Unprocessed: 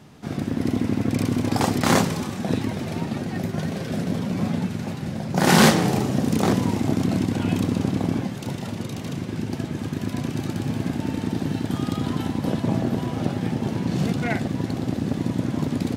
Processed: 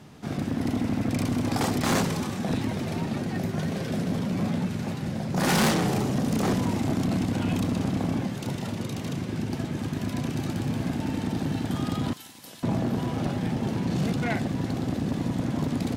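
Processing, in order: 12.13–12.63 s: pre-emphasis filter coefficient 0.97; saturation -17.5 dBFS, distortion -11 dB; Chebyshev shaper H 5 -35 dB, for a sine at -17.5 dBFS; trim -1 dB

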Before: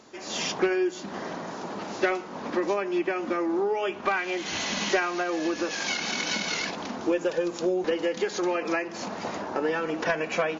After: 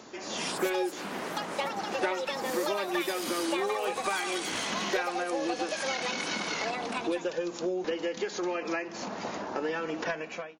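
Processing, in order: fade out at the end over 0.58 s; ever faster or slower copies 232 ms, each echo +7 st, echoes 2; three bands compressed up and down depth 40%; trim -5.5 dB

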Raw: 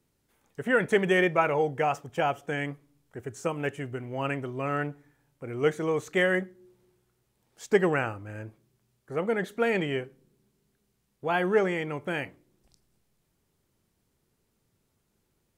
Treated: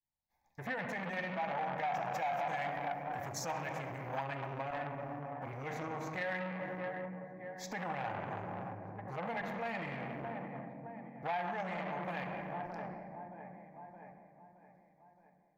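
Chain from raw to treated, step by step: 2.13–4.24 s: treble shelf 2.9 kHz +10.5 dB; expander -60 dBFS; peaking EQ 760 Hz +8 dB 0.91 oct; feedback echo behind a low-pass 619 ms, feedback 48%, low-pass 1.3 kHz, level -14 dB; tremolo saw up 0.85 Hz, depth 55%; reverberation RT60 2.4 s, pre-delay 3 ms, DRR 4.5 dB; peak limiter -23 dBFS, peak gain reduction 15.5 dB; static phaser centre 2 kHz, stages 8; compression 2:1, threshold -39 dBFS, peak gain reduction 6 dB; transformer saturation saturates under 1.2 kHz; trim +4 dB

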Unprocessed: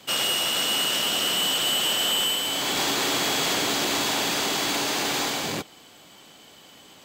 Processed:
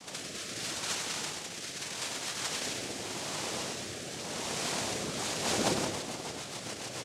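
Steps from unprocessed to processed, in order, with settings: compressor with a negative ratio -32 dBFS, ratio -0.5; spring tank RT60 1.6 s, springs 55 ms, chirp 70 ms, DRR -9 dB; noise-vocoded speech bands 2; rotary cabinet horn 0.8 Hz, later 7 Hz, at 4.85 s; on a send: delay 99 ms -8 dB; on the sum: trim -6.5 dB

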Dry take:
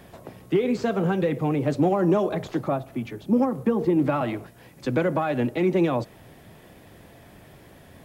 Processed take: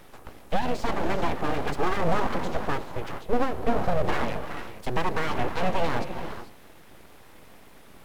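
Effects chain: 1.37–1.97 s: comb filter that takes the minimum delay 2.5 ms; gated-style reverb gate 470 ms rising, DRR 7.5 dB; full-wave rectifier

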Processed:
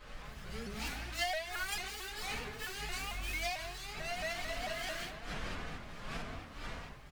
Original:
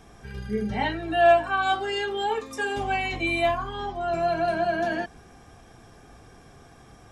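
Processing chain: median filter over 41 samples; wind noise 510 Hz -35 dBFS; de-hum 67.21 Hz, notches 31; speakerphone echo 140 ms, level -9 dB; reverberation RT60 0.55 s, pre-delay 3 ms, DRR -12 dB; compression 6:1, threshold -12 dBFS, peak gain reduction 11.5 dB; amplifier tone stack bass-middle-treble 5-5-5; flange 0.91 Hz, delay 3.5 ms, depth 1.9 ms, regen -47%; tilt shelf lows -6.5 dB, about 1.2 kHz; vibrato with a chosen wave saw up 4.5 Hz, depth 160 cents

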